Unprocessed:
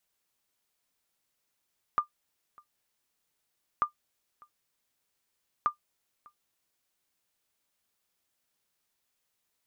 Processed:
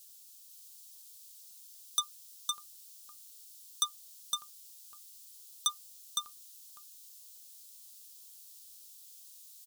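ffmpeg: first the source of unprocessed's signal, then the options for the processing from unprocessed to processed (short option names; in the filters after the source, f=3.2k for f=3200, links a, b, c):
-f lavfi -i "aevalsrc='0.15*(sin(2*PI*1200*mod(t,1.84))*exp(-6.91*mod(t,1.84)/0.11)+0.0422*sin(2*PI*1200*max(mod(t,1.84)-0.6,0))*exp(-6.91*max(mod(t,1.84)-0.6,0)/0.11))':d=5.52:s=44100"
-af "asoftclip=type=tanh:threshold=-34dB,aexciter=amount=7.6:drive=8.5:freq=3.1k,aecho=1:1:511:0.668"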